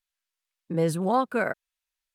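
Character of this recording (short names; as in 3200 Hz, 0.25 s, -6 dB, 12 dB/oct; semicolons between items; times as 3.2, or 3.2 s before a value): noise floor -88 dBFS; spectral tilt -3.5 dB/oct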